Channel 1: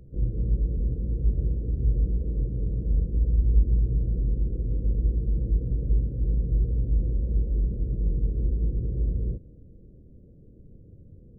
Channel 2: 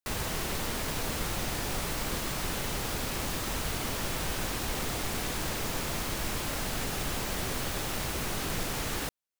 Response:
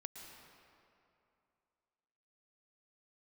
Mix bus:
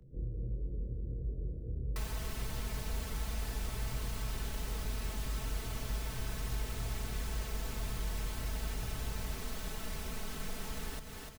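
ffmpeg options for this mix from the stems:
-filter_complex "[0:a]flanger=delay=22.5:depth=4.2:speed=1.5,volume=0.473,asplit=2[s0][s1];[s1]volume=0.596[s2];[1:a]aecho=1:1:4.6:0.92,adelay=1900,volume=0.596,asplit=2[s3][s4];[s4]volume=0.282[s5];[2:a]atrim=start_sample=2205[s6];[s2][s6]afir=irnorm=-1:irlink=0[s7];[s5]aecho=0:1:297|594|891|1188|1485:1|0.36|0.13|0.0467|0.0168[s8];[s0][s3][s7][s8]amix=inputs=4:normalize=0,acrossover=split=140|340[s9][s10][s11];[s9]acompressor=threshold=0.0178:ratio=4[s12];[s10]acompressor=threshold=0.002:ratio=4[s13];[s11]acompressor=threshold=0.00562:ratio=4[s14];[s12][s13][s14]amix=inputs=3:normalize=0"

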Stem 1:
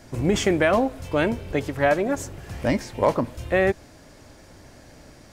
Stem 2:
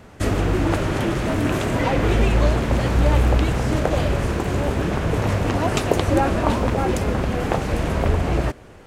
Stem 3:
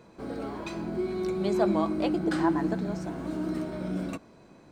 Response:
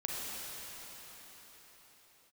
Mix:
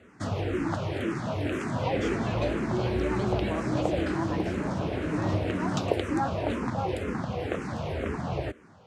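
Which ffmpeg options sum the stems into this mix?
-filter_complex "[0:a]alimiter=limit=0.119:level=0:latency=1,adelay=1650,volume=0.251[s0];[1:a]highpass=f=80:w=0.5412,highpass=f=80:w=1.3066,asplit=2[s1][s2];[s2]afreqshift=-2[s3];[s1][s3]amix=inputs=2:normalize=1,volume=0.531[s4];[2:a]alimiter=limit=0.0944:level=0:latency=1:release=242,adelay=1750,volume=0.841[s5];[s0][s4][s5]amix=inputs=3:normalize=0,adynamicsmooth=sensitivity=2:basefreq=7400"

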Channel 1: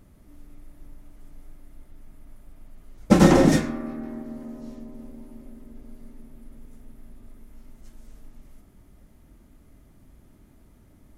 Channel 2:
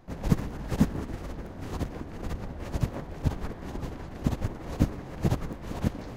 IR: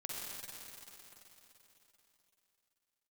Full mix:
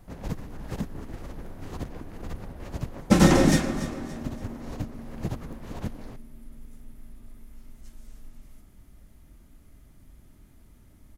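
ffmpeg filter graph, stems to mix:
-filter_complex "[0:a]equalizer=f=450:w=0.34:g=-6,volume=1.26,asplit=2[s0][s1];[s1]volume=0.211[s2];[1:a]alimiter=limit=0.15:level=0:latency=1:release=334,volume=0.708[s3];[s2]aecho=0:1:286|572|858|1144|1430:1|0.38|0.144|0.0549|0.0209[s4];[s0][s3][s4]amix=inputs=3:normalize=0"

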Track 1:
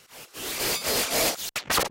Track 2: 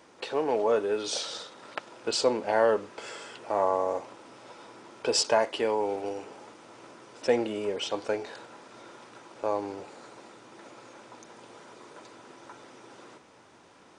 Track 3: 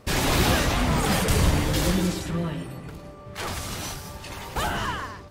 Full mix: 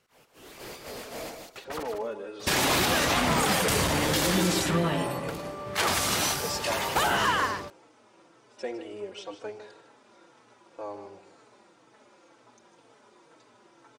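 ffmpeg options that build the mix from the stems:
-filter_complex "[0:a]highshelf=f=2200:g=-11,volume=0.299,asplit=2[s0][s1];[s1]volume=0.473[s2];[1:a]asplit=2[s3][s4];[s4]adelay=4,afreqshift=-2[s5];[s3][s5]amix=inputs=2:normalize=1,adelay=1350,volume=0.501,asplit=2[s6][s7];[s7]volume=0.266[s8];[2:a]acontrast=76,highpass=f=340:p=1,adelay=2400,volume=1.19[s9];[s2][s8]amix=inputs=2:normalize=0,aecho=0:1:154|308|462:1|0.17|0.0289[s10];[s0][s6][s9][s10]amix=inputs=4:normalize=0,alimiter=limit=0.178:level=0:latency=1:release=140"

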